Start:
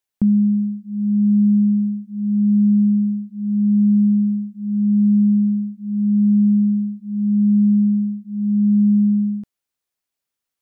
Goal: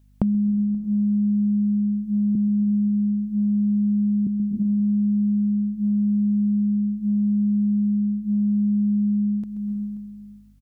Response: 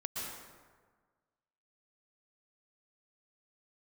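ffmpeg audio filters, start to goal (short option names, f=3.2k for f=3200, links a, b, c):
-filter_complex "[0:a]asettb=1/sr,asplit=3[a][b][c];[a]atrim=end=2.354[d];[b]atrim=start=2.35:end=4.27,asetpts=PTS-STARTPTS,afade=t=in:d=0.004:c=qsin,afade=t=out:st=1.916:d=0.004:c=qsin,highpass=f=130:w=0.5412,highpass=f=130:w=1.3066[e];[c]atrim=start=4.266[f];[d][e]acrossfade=d=0.004:c1=hsin:c2=qsin[g];[g][f]acrossfade=d=0.004:c1=qsin:c2=hsin,aecho=1:1:531:0.1,asplit=2[h][i];[1:a]atrim=start_sample=2205,adelay=130[j];[i][j]afir=irnorm=-1:irlink=0,volume=-11.5dB[k];[h][k]amix=inputs=2:normalize=0,acompressor=threshold=-27dB:ratio=10,aeval=exprs='val(0)+0.000891*(sin(2*PI*50*n/s)+sin(2*PI*2*50*n/s)/2+sin(2*PI*3*50*n/s)/3+sin(2*PI*4*50*n/s)/4+sin(2*PI*5*50*n/s)/5)':c=same,volume=7.5dB"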